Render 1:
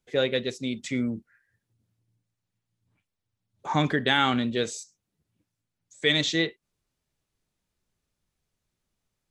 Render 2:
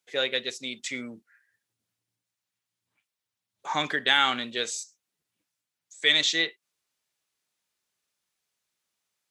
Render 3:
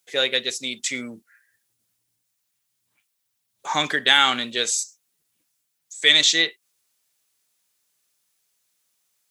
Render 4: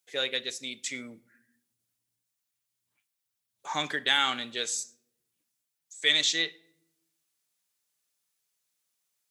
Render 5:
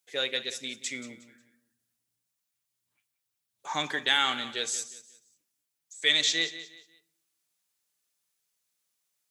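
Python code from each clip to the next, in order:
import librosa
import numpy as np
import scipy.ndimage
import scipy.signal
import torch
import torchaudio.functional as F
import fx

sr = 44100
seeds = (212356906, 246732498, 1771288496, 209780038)

y1 = fx.highpass(x, sr, hz=1400.0, slope=6)
y1 = y1 * librosa.db_to_amplitude(4.0)
y2 = fx.high_shelf(y1, sr, hz=6400.0, db=12.0)
y2 = y2 * librosa.db_to_amplitude(4.0)
y3 = fx.room_shoebox(y2, sr, seeds[0], volume_m3=2300.0, walls='furnished', distance_m=0.37)
y3 = y3 * librosa.db_to_amplitude(-8.5)
y4 = fx.echo_feedback(y3, sr, ms=180, feedback_pct=31, wet_db=-14.5)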